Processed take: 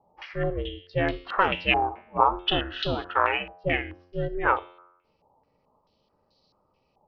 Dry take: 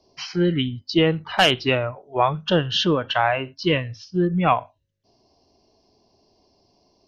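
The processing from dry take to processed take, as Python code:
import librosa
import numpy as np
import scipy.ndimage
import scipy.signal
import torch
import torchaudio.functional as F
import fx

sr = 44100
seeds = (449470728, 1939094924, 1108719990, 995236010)

y = x * np.sin(2.0 * np.pi * 200.0 * np.arange(len(x)) / sr)
y = fx.comb_fb(y, sr, f0_hz=89.0, decay_s=0.79, harmonics='all', damping=0.0, mix_pct=50)
y = fx.filter_held_lowpass(y, sr, hz=4.6, low_hz=850.0, high_hz=4000.0)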